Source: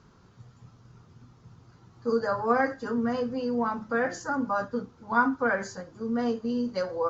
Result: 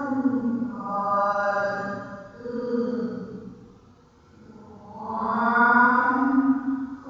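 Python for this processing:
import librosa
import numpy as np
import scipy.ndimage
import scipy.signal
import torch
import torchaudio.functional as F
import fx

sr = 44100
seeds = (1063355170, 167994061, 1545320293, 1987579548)

p1 = fx.paulstretch(x, sr, seeds[0], factor=6.9, window_s=0.1, from_s=4.36)
p2 = p1 + fx.echo_single(p1, sr, ms=241, db=-13.0, dry=0)
y = F.gain(torch.from_numpy(p2), 2.5).numpy()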